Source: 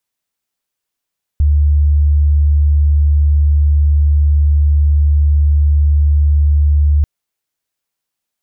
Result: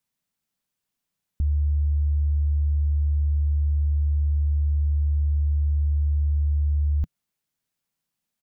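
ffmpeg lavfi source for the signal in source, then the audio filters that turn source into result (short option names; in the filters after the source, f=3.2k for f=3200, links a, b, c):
-f lavfi -i "aevalsrc='0.422*sin(2*PI*73.5*t)':d=5.64:s=44100"
-af "alimiter=limit=-18.5dB:level=0:latency=1:release=16,firequalizer=gain_entry='entry(100,0);entry(160,7);entry(360,-4)':delay=0.05:min_phase=1"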